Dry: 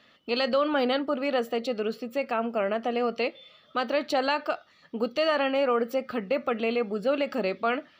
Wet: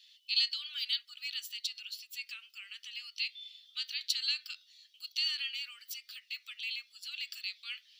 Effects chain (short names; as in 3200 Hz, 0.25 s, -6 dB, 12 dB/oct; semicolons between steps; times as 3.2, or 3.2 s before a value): inverse Chebyshev high-pass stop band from 770 Hz, stop band 70 dB; gain +6.5 dB